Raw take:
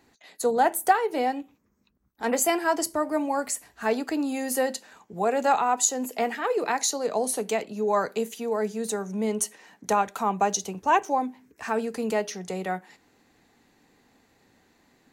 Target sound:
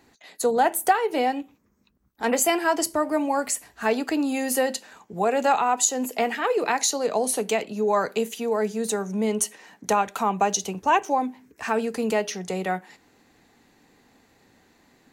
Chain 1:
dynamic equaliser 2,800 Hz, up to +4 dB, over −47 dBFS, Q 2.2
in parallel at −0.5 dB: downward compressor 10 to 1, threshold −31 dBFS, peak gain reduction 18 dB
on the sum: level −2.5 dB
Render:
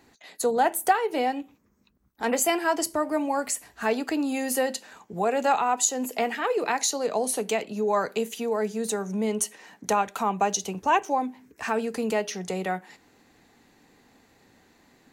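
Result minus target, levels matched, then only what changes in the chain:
downward compressor: peak gain reduction +7.5 dB
change: downward compressor 10 to 1, threshold −22.5 dBFS, peak gain reduction 10 dB

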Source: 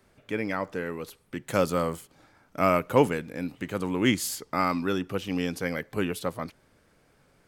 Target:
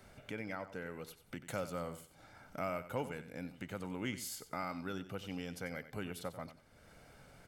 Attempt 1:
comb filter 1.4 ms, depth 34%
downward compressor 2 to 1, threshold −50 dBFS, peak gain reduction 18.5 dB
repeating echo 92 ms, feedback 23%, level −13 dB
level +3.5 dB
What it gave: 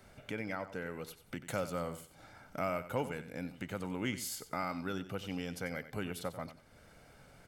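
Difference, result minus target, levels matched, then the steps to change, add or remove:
downward compressor: peak gain reduction −3 dB
change: downward compressor 2 to 1, threshold −56.5 dBFS, peak gain reduction 22 dB

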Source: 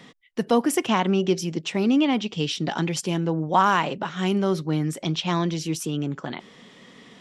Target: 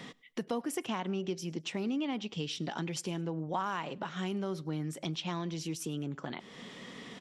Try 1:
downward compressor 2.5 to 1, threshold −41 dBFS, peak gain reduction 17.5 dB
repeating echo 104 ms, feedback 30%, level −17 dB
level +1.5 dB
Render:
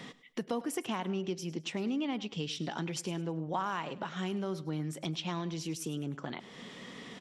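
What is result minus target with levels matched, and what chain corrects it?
echo-to-direct +8.5 dB
downward compressor 2.5 to 1, threshold −41 dBFS, peak gain reduction 17.5 dB
repeating echo 104 ms, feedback 30%, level −25.5 dB
level +1.5 dB

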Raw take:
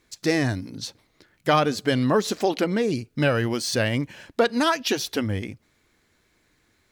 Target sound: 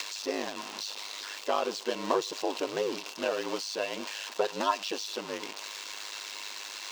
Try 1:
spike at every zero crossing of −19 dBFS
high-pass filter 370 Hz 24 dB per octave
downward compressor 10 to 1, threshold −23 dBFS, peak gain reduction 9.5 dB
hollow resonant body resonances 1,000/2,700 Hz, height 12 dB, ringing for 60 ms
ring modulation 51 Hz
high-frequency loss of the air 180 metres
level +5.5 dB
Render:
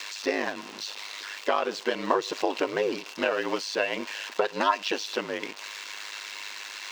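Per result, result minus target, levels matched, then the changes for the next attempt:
spike at every zero crossing: distortion −9 dB; 2,000 Hz band +3.5 dB
change: spike at every zero crossing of −9.5 dBFS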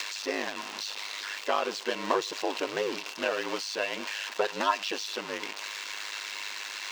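2,000 Hz band +4.0 dB
add after high-pass filter: dynamic equaliser 1,900 Hz, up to −8 dB, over −39 dBFS, Q 1

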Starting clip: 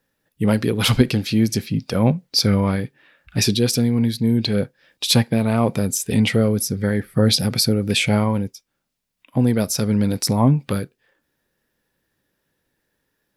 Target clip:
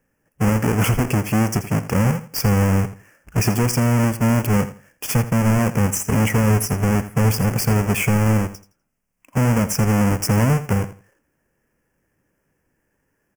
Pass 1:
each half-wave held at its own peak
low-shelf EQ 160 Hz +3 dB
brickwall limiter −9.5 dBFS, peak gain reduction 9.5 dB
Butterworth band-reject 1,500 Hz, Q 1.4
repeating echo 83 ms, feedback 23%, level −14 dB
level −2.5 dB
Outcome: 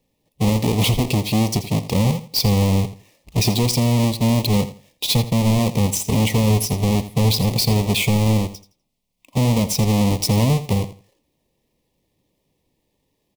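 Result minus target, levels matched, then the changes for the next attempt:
4,000 Hz band +9.0 dB
change: Butterworth band-reject 3,900 Hz, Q 1.4

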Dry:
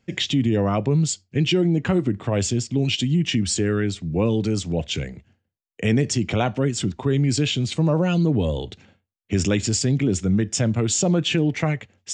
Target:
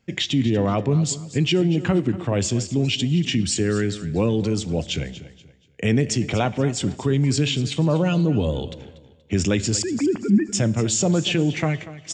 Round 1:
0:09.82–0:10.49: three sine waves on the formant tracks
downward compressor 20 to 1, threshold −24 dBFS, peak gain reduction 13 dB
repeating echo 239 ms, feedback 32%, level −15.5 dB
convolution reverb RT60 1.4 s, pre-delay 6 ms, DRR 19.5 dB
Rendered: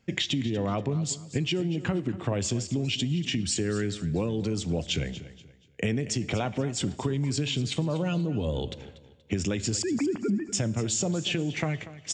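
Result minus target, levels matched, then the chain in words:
downward compressor: peak gain reduction +13 dB
0:09.82–0:10.49: three sine waves on the formant tracks
repeating echo 239 ms, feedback 32%, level −15.5 dB
convolution reverb RT60 1.4 s, pre-delay 6 ms, DRR 19.5 dB

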